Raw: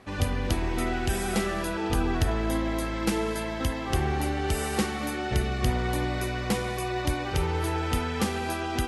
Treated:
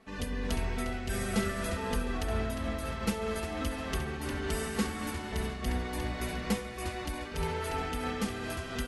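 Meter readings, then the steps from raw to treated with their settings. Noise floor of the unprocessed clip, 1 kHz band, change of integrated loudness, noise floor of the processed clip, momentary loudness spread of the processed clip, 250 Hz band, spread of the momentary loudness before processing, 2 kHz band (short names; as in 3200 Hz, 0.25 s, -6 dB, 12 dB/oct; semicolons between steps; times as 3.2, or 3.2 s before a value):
-32 dBFS, -7.0 dB, -6.0 dB, -40 dBFS, 4 LU, -5.5 dB, 3 LU, -5.0 dB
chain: comb 4.5 ms, depth 98%; frequency-shifting echo 0.354 s, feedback 33%, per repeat -130 Hz, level -7 dB; noise-modulated level, depth 55%; gain -6.5 dB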